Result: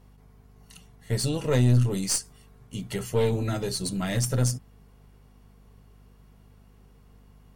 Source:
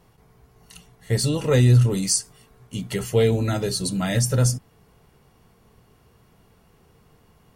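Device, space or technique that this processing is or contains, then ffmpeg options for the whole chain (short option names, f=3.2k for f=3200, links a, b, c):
valve amplifier with mains hum: -af "aeval=exprs='(tanh(3.98*val(0)+0.55)-tanh(0.55))/3.98':c=same,aeval=exprs='val(0)+0.00282*(sin(2*PI*50*n/s)+sin(2*PI*2*50*n/s)/2+sin(2*PI*3*50*n/s)/3+sin(2*PI*4*50*n/s)/4+sin(2*PI*5*50*n/s)/5)':c=same,volume=-2dB"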